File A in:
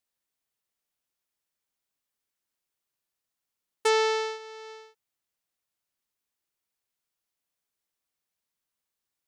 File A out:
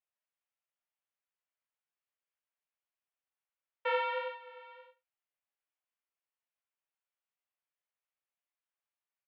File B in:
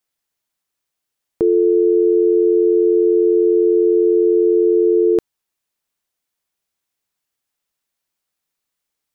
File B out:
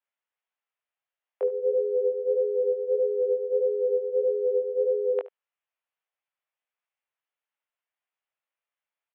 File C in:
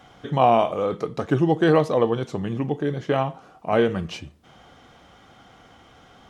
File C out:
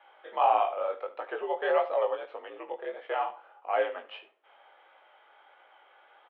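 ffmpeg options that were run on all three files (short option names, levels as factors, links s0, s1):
-af "flanger=delay=17:depth=4.9:speed=1.6,aecho=1:1:73:0.141,highpass=f=440:t=q:w=0.5412,highpass=f=440:t=q:w=1.307,lowpass=f=3000:t=q:w=0.5176,lowpass=f=3000:t=q:w=0.7071,lowpass=f=3000:t=q:w=1.932,afreqshift=65,volume=0.708"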